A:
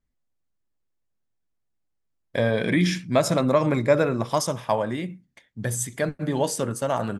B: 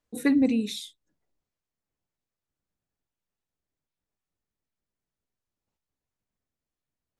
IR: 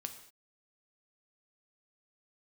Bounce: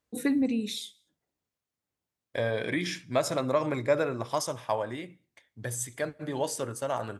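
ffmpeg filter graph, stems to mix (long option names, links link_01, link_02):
-filter_complex "[0:a]equalizer=frequency=190:width_type=o:width=0.66:gain=-11.5,volume=-6.5dB,asplit=2[link_01][link_02];[link_02]volume=-14.5dB[link_03];[1:a]acompressor=threshold=-27dB:ratio=2,volume=-1.5dB,asplit=2[link_04][link_05];[link_05]volume=-9.5dB[link_06];[2:a]atrim=start_sample=2205[link_07];[link_03][link_06]amix=inputs=2:normalize=0[link_08];[link_08][link_07]afir=irnorm=-1:irlink=0[link_09];[link_01][link_04][link_09]amix=inputs=3:normalize=0,highpass=74"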